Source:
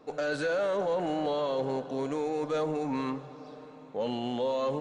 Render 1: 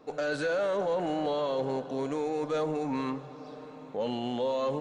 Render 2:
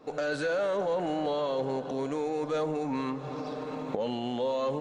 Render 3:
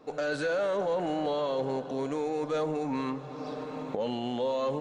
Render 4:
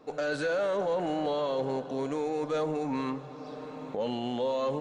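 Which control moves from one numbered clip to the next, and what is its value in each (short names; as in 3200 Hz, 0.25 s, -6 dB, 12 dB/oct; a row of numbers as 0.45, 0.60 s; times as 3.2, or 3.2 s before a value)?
recorder AGC, rising by: 5, 77, 31, 13 dB/s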